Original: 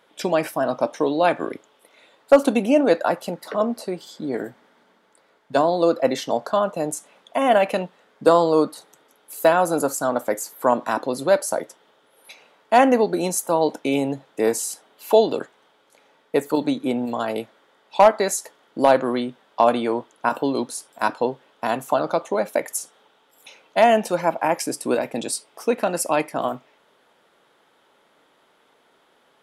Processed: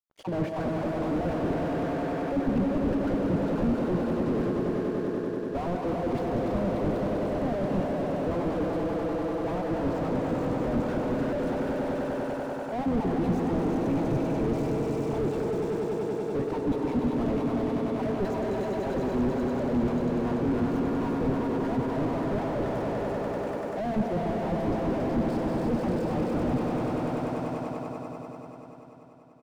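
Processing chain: random holes in the spectrogram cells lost 34%; low-pass 3.8 kHz 12 dB/octave; spectral gate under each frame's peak -20 dB strong; bass shelf 290 Hz +12 dB; reverse; compression 8:1, threshold -22 dBFS, peak gain reduction 17 dB; reverse; crossover distortion -44 dBFS; on a send: echo with a slow build-up 97 ms, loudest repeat 5, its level -9 dB; on the sum: harmony voices -7 st -13 dB; gated-style reverb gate 380 ms rising, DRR 8 dB; slew-rate limiter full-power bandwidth 17 Hz; trim +2 dB

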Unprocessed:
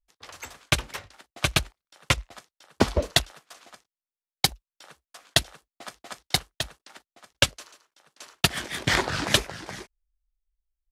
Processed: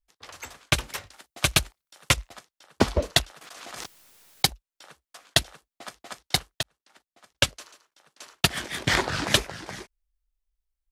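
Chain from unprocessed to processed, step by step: 0.75–2.33 s: treble shelf 5.9 kHz +8 dB; 3.41–4.47 s: swell ahead of each attack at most 31 dB/s; 6.63–7.57 s: fade in

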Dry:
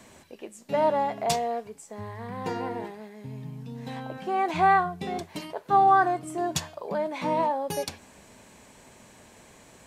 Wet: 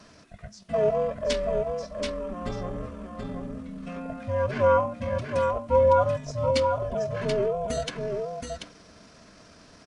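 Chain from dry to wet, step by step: every band turned upside down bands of 500 Hz; delay 730 ms -5 dB; pitch shift -6.5 st

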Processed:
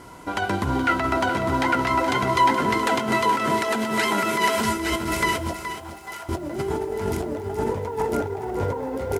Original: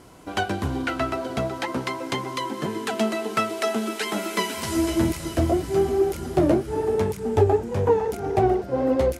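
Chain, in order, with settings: feedback delay 854 ms, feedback 35%, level -3.5 dB; compressor with a negative ratio -26 dBFS, ratio -1; 5.53–6.29 s: ladder high-pass 700 Hz, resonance 40%; small resonant body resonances 970/1400/2000 Hz, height 11 dB; bit-crushed delay 423 ms, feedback 35%, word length 8-bit, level -10.5 dB

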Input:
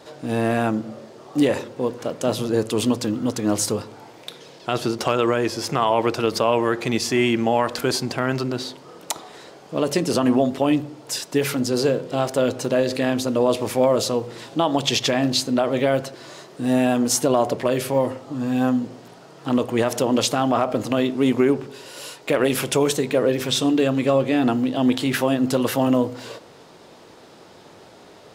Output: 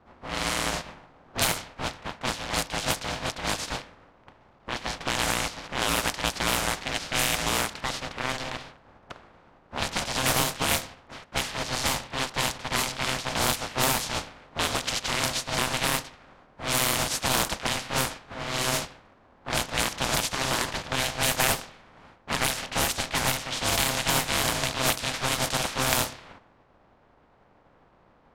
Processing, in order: spectral contrast reduction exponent 0.27; ring modulator 390 Hz; level-controlled noise filter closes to 960 Hz, open at -17 dBFS; trim -3 dB

